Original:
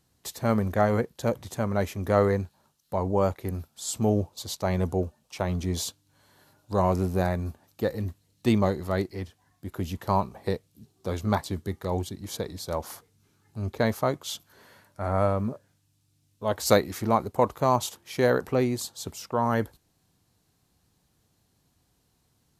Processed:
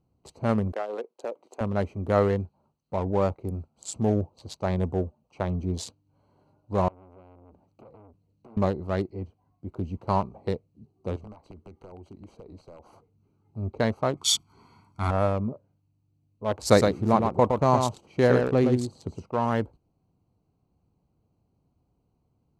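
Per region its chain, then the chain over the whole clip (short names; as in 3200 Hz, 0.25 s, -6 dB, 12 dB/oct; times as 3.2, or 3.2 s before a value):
0.72–1.61 HPF 360 Hz 24 dB/oct + transient shaper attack +4 dB, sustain -4 dB + compressor 3:1, threshold -28 dBFS
6.88–8.57 compressor 20:1, threshold -37 dBFS + notches 60/120/180 Hz + core saturation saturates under 3200 Hz
11.16–12.93 bell 130 Hz -7 dB 1.7 oct + compressor 16:1, threshold -38 dBFS + wrapped overs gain 34.5 dB
14.17–15.11 high shelf 2100 Hz +11.5 dB + comb 0.9 ms, depth 98%
16.58–19.26 low shelf 360 Hz +4.5 dB + echo 0.114 s -5 dB
whole clip: Wiener smoothing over 25 samples; LPF 10000 Hz 24 dB/oct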